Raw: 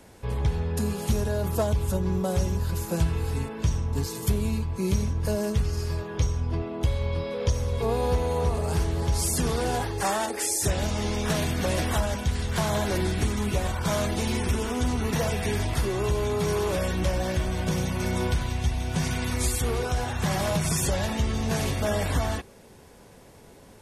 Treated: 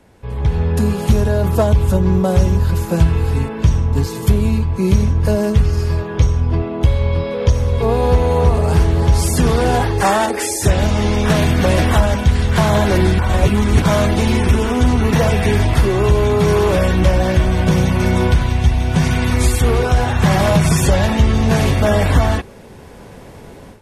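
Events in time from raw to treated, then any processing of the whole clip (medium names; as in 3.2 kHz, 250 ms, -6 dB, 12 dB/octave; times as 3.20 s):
13.19–13.82 s: reverse
whole clip: tone controls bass +2 dB, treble -7 dB; level rider gain up to 13 dB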